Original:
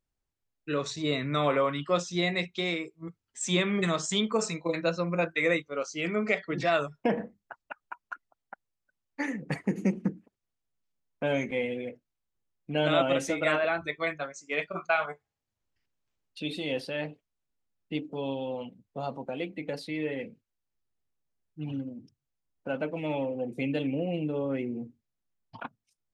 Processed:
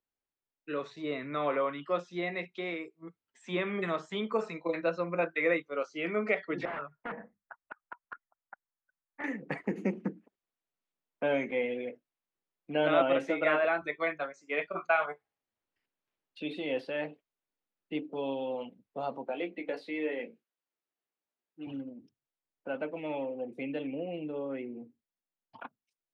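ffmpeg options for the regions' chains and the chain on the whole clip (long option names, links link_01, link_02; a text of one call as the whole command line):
ffmpeg -i in.wav -filter_complex "[0:a]asettb=1/sr,asplit=3[link_01][link_02][link_03];[link_01]atrim=end=6.654[link_04];[link_02]atrim=start=6.65:end=9.24,asetpts=PTS-STARTPTS,afade=type=in:duration=0.004:curve=qsin,afade=type=out:start_time=2.586:duration=0.004:curve=qsin,equalizer=frequency=370:width_type=o:width=1.9:gain=-14,aeval=exprs='(mod(22.4*val(0)+1,2)-1)/22.4':channel_layout=same,lowpass=frequency=1900:width=0.5412,lowpass=frequency=1900:width=1.3066[link_05];[link_03]atrim=start=9.236[link_06];[link_04][link_05]acrossfade=duration=0.004:curve1=hsin:curve2=qsin[link_07];[link_07][link_06]acrossfade=duration=0.004:curve1=qsin:curve2=hsin,asettb=1/sr,asplit=3[link_08][link_09][link_10];[link_08]atrim=end=19.264[link_11];[link_09]atrim=start=19.26:end=21.67,asetpts=PTS-STARTPTS,afade=type=in:duration=0.004:curve=qsin,afade=type=out:start_time=2.406:duration=0.004:curve=qsin,highpass=240,asplit=2[link_12][link_13];[link_13]adelay=17,volume=-6dB[link_14];[link_12][link_14]amix=inputs=2:normalize=0,atrim=end_sample=106281[link_15];[link_10]atrim=start=21.666[link_16];[link_11][link_15]acrossfade=duration=0.004:curve1=hsin:curve2=qsin[link_17];[link_17][link_16]acrossfade=duration=0.004:curve1=qsin:curve2=hsin,acrossover=split=2900[link_18][link_19];[link_19]acompressor=threshold=-48dB:ratio=4:attack=1:release=60[link_20];[link_18][link_20]amix=inputs=2:normalize=0,acrossover=split=220 3900:gain=0.178 1 0.224[link_21][link_22][link_23];[link_21][link_22][link_23]amix=inputs=3:normalize=0,dynaudnorm=framelen=430:gausssize=21:maxgain=4dB,volume=-4dB" out.wav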